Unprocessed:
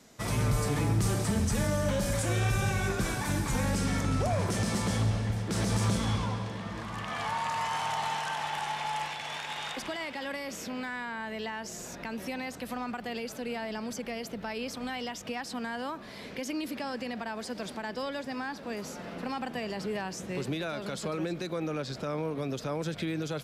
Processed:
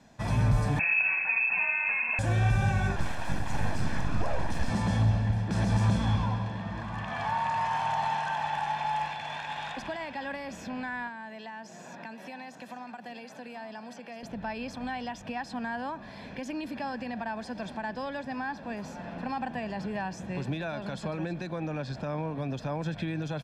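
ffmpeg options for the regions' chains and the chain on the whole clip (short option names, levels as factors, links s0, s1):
-filter_complex "[0:a]asettb=1/sr,asplit=3[s0][s1][s2];[s0]atrim=end=0.794[s3];[s1]atrim=start=0.79:end=2.19,asetpts=PTS-STARTPTS,afade=t=in:d=0.004:c=qsin,afade=t=out:st=1.396:d=0.004:c=qsin,equalizer=f=520:w=4.8:g=6.5,lowpass=f=2300:t=q:w=0.5098,lowpass=f=2300:t=q:w=0.6013,lowpass=f=2300:t=q:w=0.9,lowpass=f=2300:t=q:w=2.563,afreqshift=-2700[s4];[s2]atrim=start=2.186[s5];[s3][s4]acrossfade=d=0.004:c1=hsin:c2=qsin[s6];[s6][s5]acrossfade=d=0.004:c1=qsin:c2=hsin,asettb=1/sr,asplit=3[s7][s8][s9];[s7]atrim=end=2.964[s10];[s8]atrim=start=2.96:end=4.7,asetpts=PTS-STARTPTS,afade=t=in:d=0.004:c=qsin,afade=t=out:st=1.736:d=0.004:c=qsin,afreqshift=-71,aeval=exprs='abs(val(0))':c=same[s11];[s9]atrim=start=4.696[s12];[s10][s11]acrossfade=d=0.004:c1=hsin:c2=qsin[s13];[s13][s12]acrossfade=d=0.004:c1=qsin:c2=hsin,asettb=1/sr,asplit=3[s14][s15][s16];[s14]atrim=end=11.074[s17];[s15]atrim=start=11.07:end=14.23,asetpts=PTS-STARTPTS,afade=t=in:d=0.004:c=qsin,afade=t=out:st=3.156:d=0.004:c=qsin,highpass=f=150:w=0.5412,highpass=f=150:w=1.3066,acrossover=split=370|4500[s18][s19][s20];[s18]acompressor=threshold=0.00282:ratio=4[s21];[s19]acompressor=threshold=0.00794:ratio=4[s22];[s20]acompressor=threshold=0.00398:ratio=4[s23];[s21][s22][s23]amix=inputs=3:normalize=0,aecho=1:1:839:0.224,atrim=end_sample=139356[s24];[s16]atrim=start=14.226[s25];[s17][s24]acrossfade=d=0.004:c1=hsin:c2=qsin[s26];[s26][s25]acrossfade=d=0.004:c1=qsin:c2=hsin,aemphasis=mode=reproduction:type=75fm,aecho=1:1:1.2:0.54"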